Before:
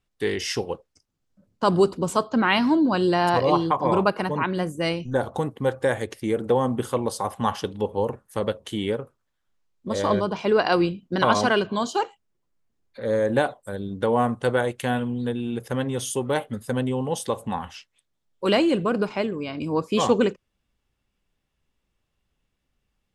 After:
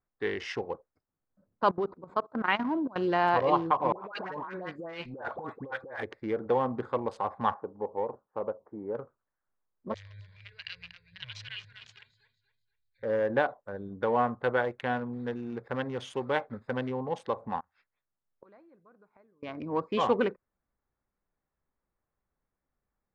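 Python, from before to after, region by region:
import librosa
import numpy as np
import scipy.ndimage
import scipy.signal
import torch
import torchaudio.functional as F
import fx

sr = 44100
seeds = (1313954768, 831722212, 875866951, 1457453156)

y = fx.chain(x, sr, fx.lowpass(hz=3700.0, slope=6),
    fx.level_steps(step_db=21), at=(1.71, 2.96))
y = fx.chain(y, sr, fx.low_shelf(hz=260.0, db=-10.5),
    fx.dispersion(late='highs', ms=93.0, hz=1200.0),
    fx.over_compress(threshold_db=-33.0, ratio=-1.0), at=(3.92, 6.03))
y = fx.chain(y, sr, fx.lowpass(hz=1100.0, slope=24),
    fx.low_shelf(hz=190.0, db=-12.0), at=(7.54, 8.95))
y = fx.chain(y, sr, fx.cheby2_bandstop(low_hz=200.0, high_hz=1300.0, order=4, stop_db=40),
    fx.echo_warbled(ms=241, feedback_pct=34, rate_hz=2.8, cents=63, wet_db=-7.5), at=(9.94, 13.03))
y = fx.chain(y, sr, fx.block_float(bits=5),
    fx.peak_eq(hz=3100.0, db=3.5, octaves=1.3), at=(15.13, 16.94))
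y = fx.chain(y, sr, fx.gate_flip(shuts_db=-27.0, range_db=-27),
    fx.peak_eq(hz=430.0, db=-4.5, octaves=2.9), at=(17.6, 19.43))
y = fx.wiener(y, sr, points=15)
y = scipy.signal.sosfilt(scipy.signal.butter(2, 2300.0, 'lowpass', fs=sr, output='sos'), y)
y = fx.low_shelf(y, sr, hz=470.0, db=-11.5)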